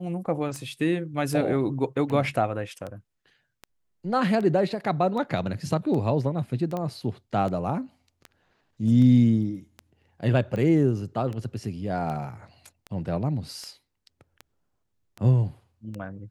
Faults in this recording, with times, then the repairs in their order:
tick 78 rpm -23 dBFS
6.77 s: pop -19 dBFS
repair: de-click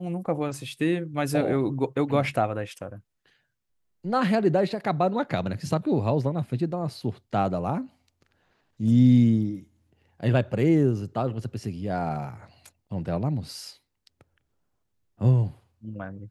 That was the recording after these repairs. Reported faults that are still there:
nothing left

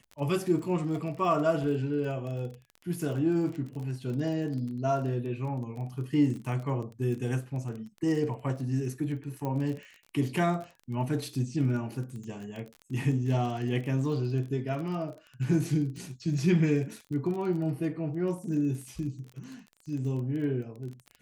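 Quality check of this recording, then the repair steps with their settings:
crackle 27 per s -36 dBFS
9.45 s: pop -22 dBFS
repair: de-click

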